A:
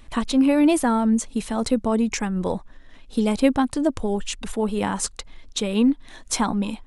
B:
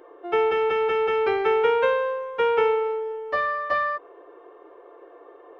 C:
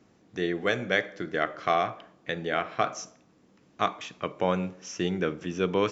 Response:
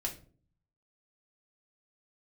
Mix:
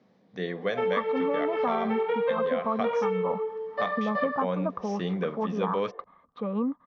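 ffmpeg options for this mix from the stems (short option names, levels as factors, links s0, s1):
-filter_complex "[0:a]lowpass=f=1200:t=q:w=14,adelay=800,volume=0.398[s0];[1:a]flanger=delay=17.5:depth=4.8:speed=1.1,adelay=450,volume=1[s1];[2:a]volume=0.891[s2];[s0][s1][s2]amix=inputs=3:normalize=0,highpass=170,equalizer=f=190:t=q:w=4:g=6,equalizer=f=330:t=q:w=4:g=-10,equalizer=f=520:t=q:w=4:g=5,equalizer=f=1400:t=q:w=4:g=-6,equalizer=f=2700:t=q:w=4:g=-7,lowpass=f=4500:w=0.5412,lowpass=f=4500:w=1.3066,acompressor=threshold=0.0708:ratio=6"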